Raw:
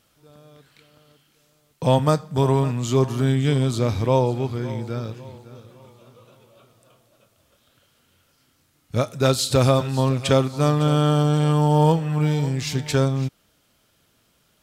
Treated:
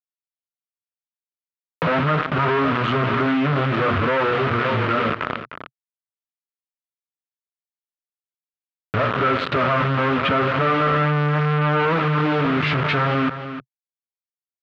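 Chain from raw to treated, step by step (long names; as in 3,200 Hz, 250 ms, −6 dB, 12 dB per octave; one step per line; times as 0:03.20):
adaptive Wiener filter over 15 samples
treble cut that deepens with the level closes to 1,600 Hz, closed at −18.5 dBFS
low-shelf EQ 220 Hz −5.5 dB
mains-hum notches 60/120/180/240/300/360/420/480/540 Hz
brickwall limiter −15 dBFS, peak gain reduction 8 dB
flanger 0.66 Hz, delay 8.5 ms, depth 6.2 ms, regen −7%
log-companded quantiser 2 bits
loudspeaker in its box 120–3,000 Hz, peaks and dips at 130 Hz −5 dB, 220 Hz −5 dB, 350 Hz −6 dB, 520 Hz −4 dB, 820 Hz −8 dB, 1,300 Hz +8 dB
single-tap delay 305 ms −22 dB
envelope flattener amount 50%
level +8 dB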